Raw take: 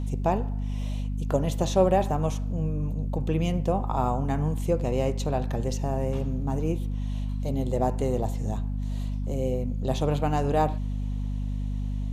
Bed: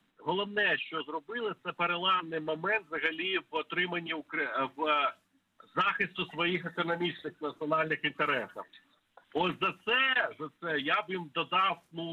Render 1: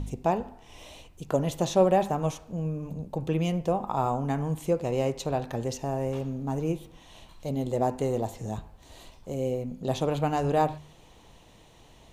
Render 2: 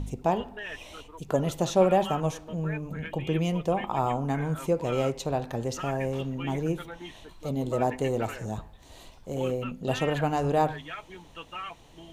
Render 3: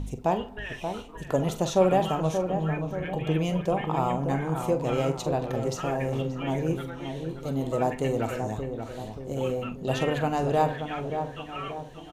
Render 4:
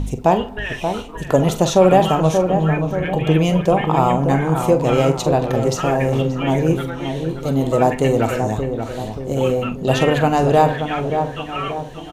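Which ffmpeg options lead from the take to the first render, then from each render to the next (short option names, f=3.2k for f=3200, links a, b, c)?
-af "bandreject=f=50:t=h:w=4,bandreject=f=100:t=h:w=4,bandreject=f=150:t=h:w=4,bandreject=f=200:t=h:w=4,bandreject=f=250:t=h:w=4"
-filter_complex "[1:a]volume=-10.5dB[a];[0:a][a]amix=inputs=2:normalize=0"
-filter_complex "[0:a]asplit=2[a][b];[b]adelay=44,volume=-12dB[c];[a][c]amix=inputs=2:normalize=0,asplit=2[d][e];[e]adelay=580,lowpass=f=1.3k:p=1,volume=-6.5dB,asplit=2[f][g];[g]adelay=580,lowpass=f=1.3k:p=1,volume=0.51,asplit=2[h][i];[i]adelay=580,lowpass=f=1.3k:p=1,volume=0.51,asplit=2[j][k];[k]adelay=580,lowpass=f=1.3k:p=1,volume=0.51,asplit=2[l][m];[m]adelay=580,lowpass=f=1.3k:p=1,volume=0.51,asplit=2[n][o];[o]adelay=580,lowpass=f=1.3k:p=1,volume=0.51[p];[d][f][h][j][l][n][p]amix=inputs=7:normalize=0"
-af "volume=10.5dB,alimiter=limit=-2dB:level=0:latency=1"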